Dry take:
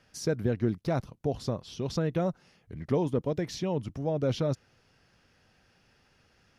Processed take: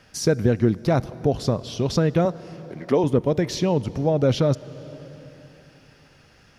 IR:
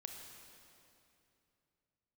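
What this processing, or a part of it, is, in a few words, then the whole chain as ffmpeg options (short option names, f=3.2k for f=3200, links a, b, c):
ducked reverb: -filter_complex "[0:a]asettb=1/sr,asplit=3[a][b][c];[a]atrim=end=2.254[d];[b]atrim=start=2.25:end=3.04,asetpts=PTS-STARTPTS,afade=t=in:d=0.004:c=qsin,afade=t=out:st=0.786:d=0.004:c=qsin,highpass=260[e];[c]atrim=start=3.036[f];[d][e]acrossfade=d=0.004:c1=hsin:c2=qsin[g];[g][f]acrossfade=d=0.004:c1=qsin:c2=hsin,asplit=3[h][i][j];[1:a]atrim=start_sample=2205[k];[i][k]afir=irnorm=-1:irlink=0[l];[j]apad=whole_len=290389[m];[l][m]sidechaincompress=threshold=-31dB:ratio=8:attack=43:release=673,volume=-3dB[n];[h][n]amix=inputs=2:normalize=0,volume=7.5dB"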